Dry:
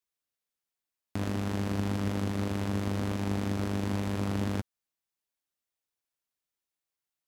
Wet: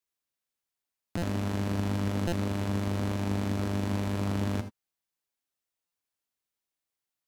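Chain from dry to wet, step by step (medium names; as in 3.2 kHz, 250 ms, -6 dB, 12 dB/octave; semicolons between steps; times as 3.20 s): gated-style reverb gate 100 ms rising, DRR 10 dB; buffer glitch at 1.17/2.27/5.86 s, samples 256, times 8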